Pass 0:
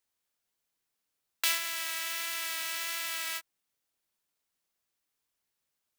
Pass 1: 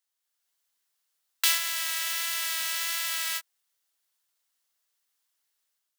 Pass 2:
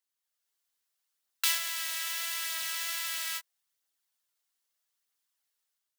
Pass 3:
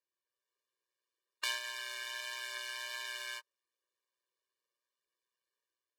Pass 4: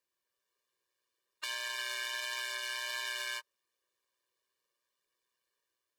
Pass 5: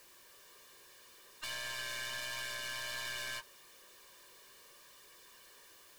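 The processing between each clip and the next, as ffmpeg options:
-af "highpass=f=1300:p=1,dynaudnorm=f=140:g=5:m=2,equalizer=f=2400:t=o:w=0.22:g=-5"
-af "aphaser=in_gain=1:out_gain=1:delay=2.9:decay=0.27:speed=0.78:type=triangular,volume=0.596"
-af "aemphasis=mode=reproduction:type=riaa,aeval=exprs='val(0)*sin(2*PI*61*n/s)':c=same,afftfilt=real='re*eq(mod(floor(b*sr/1024/310),2),1)':imag='im*eq(mod(floor(b*sr/1024/310),2),1)':win_size=1024:overlap=0.75,volume=2"
-af "alimiter=level_in=2.37:limit=0.0631:level=0:latency=1:release=32,volume=0.422,volume=1.88"
-af "aeval=exprs='val(0)+0.5*0.00282*sgn(val(0))':c=same,aeval=exprs='(tanh(70.8*val(0)+0.45)-tanh(0.45))/70.8':c=same,volume=1.12"

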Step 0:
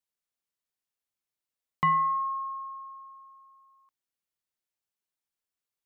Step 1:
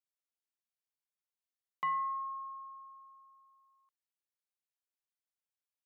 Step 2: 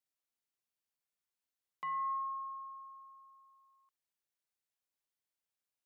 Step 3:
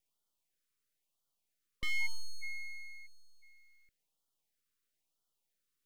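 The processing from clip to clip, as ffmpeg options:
-af "highpass=450,volume=0.355"
-af "alimiter=level_in=2.82:limit=0.0631:level=0:latency=1,volume=0.355,volume=1.12"
-af "aeval=exprs='abs(val(0))':c=same,afftfilt=real='re*(1-between(b*sr/1024,710*pow(2100/710,0.5+0.5*sin(2*PI*1*pts/sr))/1.41,710*pow(2100/710,0.5+0.5*sin(2*PI*1*pts/sr))*1.41))':imag='im*(1-between(b*sr/1024,710*pow(2100/710,0.5+0.5*sin(2*PI*1*pts/sr))/1.41,710*pow(2100/710,0.5+0.5*sin(2*PI*1*pts/sr))*1.41))':win_size=1024:overlap=0.75,volume=2.37"

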